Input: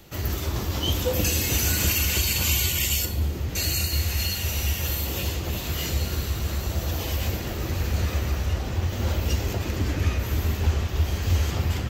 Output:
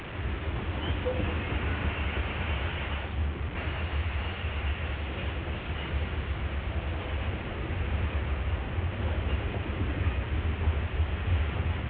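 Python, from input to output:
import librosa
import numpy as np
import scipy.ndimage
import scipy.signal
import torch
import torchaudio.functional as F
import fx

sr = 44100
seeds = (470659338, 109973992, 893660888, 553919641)

y = fx.delta_mod(x, sr, bps=16000, step_db=-27.5)
y = F.gain(torch.from_numpy(y), -5.0).numpy()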